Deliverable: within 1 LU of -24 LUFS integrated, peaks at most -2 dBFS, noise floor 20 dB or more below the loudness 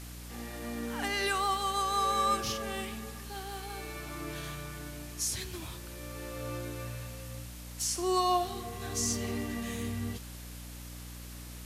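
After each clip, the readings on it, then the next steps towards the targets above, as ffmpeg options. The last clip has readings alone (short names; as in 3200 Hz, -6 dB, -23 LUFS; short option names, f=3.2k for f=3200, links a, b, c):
hum 60 Hz; harmonics up to 300 Hz; hum level -43 dBFS; noise floor -45 dBFS; noise floor target -54 dBFS; loudness -34.0 LUFS; peak -17.5 dBFS; loudness target -24.0 LUFS
-> -af "bandreject=f=60:t=h:w=6,bandreject=f=120:t=h:w=6,bandreject=f=180:t=h:w=6,bandreject=f=240:t=h:w=6,bandreject=f=300:t=h:w=6"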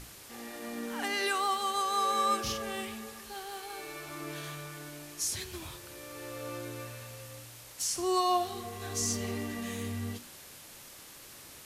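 hum none; noise floor -51 dBFS; noise floor target -54 dBFS
-> -af "afftdn=nr=6:nf=-51"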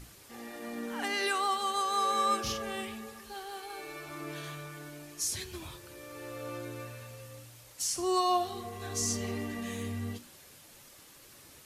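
noise floor -55 dBFS; loudness -33.5 LUFS; peak -18.0 dBFS; loudness target -24.0 LUFS
-> -af "volume=9.5dB"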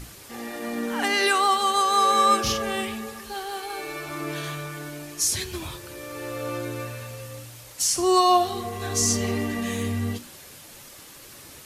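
loudness -24.0 LUFS; peak -8.5 dBFS; noise floor -46 dBFS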